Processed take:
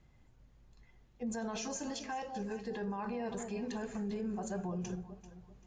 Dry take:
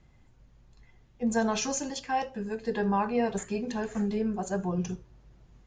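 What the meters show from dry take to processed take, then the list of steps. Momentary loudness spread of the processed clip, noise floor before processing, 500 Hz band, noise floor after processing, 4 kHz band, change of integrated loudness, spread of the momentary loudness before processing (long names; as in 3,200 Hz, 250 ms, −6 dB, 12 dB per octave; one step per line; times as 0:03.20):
5 LU, −60 dBFS, −9.0 dB, −64 dBFS, −8.0 dB, −9.0 dB, 6 LU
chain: on a send: delay that swaps between a low-pass and a high-pass 195 ms, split 860 Hz, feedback 54%, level −10.5 dB
on the sum: brickwall limiter −26.5 dBFS, peak gain reduction 11.5 dB
level −4.5 dB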